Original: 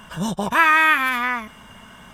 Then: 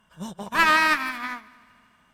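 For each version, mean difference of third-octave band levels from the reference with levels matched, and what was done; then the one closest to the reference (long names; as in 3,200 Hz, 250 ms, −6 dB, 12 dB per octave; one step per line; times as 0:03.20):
8.0 dB: asymmetric clip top −17 dBFS
on a send: echo machine with several playback heads 77 ms, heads second and third, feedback 58%, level −14 dB
on the sum: expander for the loud parts 2.5 to 1, over −29 dBFS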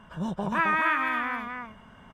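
6.0 dB: low-pass filter 1,200 Hz 6 dB per octave
on a send: single-tap delay 266 ms −4.5 dB
on the sum: level −6 dB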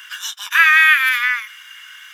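11.0 dB: Butterworth high-pass 1,500 Hz 36 dB per octave
parametric band 8,500 Hz −12.5 dB 0.21 octaves
in parallel at −2.5 dB: downward compressor, threshold −26 dBFS, peak gain reduction 12 dB
on the sum: level +5 dB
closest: second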